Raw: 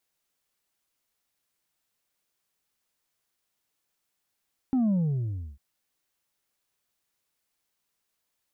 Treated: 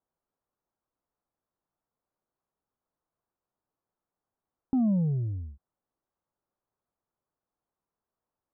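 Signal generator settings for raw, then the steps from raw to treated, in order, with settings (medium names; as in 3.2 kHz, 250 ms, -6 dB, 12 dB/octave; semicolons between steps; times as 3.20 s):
sub drop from 270 Hz, over 0.85 s, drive 3 dB, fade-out 0.67 s, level -21.5 dB
low-pass 1.2 kHz 24 dB/octave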